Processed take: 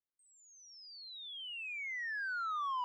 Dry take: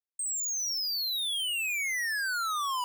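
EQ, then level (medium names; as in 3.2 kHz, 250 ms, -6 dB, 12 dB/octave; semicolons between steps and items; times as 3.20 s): tape spacing loss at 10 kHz 44 dB; 0.0 dB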